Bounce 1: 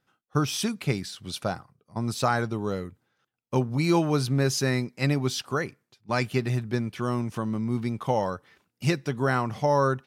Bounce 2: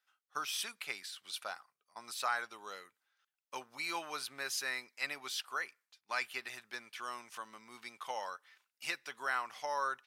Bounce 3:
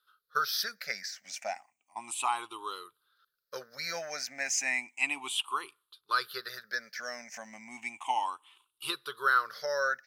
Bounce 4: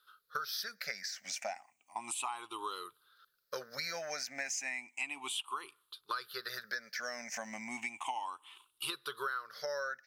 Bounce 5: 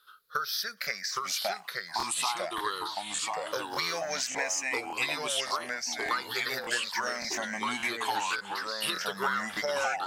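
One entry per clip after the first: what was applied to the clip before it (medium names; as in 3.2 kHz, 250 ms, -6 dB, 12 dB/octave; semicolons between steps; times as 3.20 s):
high-pass 1.3 kHz 12 dB/octave; dynamic bell 5.9 kHz, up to -6 dB, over -46 dBFS, Q 1.2; trim -3.5 dB
drifting ripple filter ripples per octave 0.62, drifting +0.33 Hz, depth 22 dB; trim +1.5 dB
compression 6:1, threshold -42 dBFS, peak gain reduction 19.5 dB; trim +5.5 dB
ever faster or slower copies 772 ms, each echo -2 st, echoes 3; crackling interface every 0.58 s, samples 1024, repeat, from 0.82 s; trim +6.5 dB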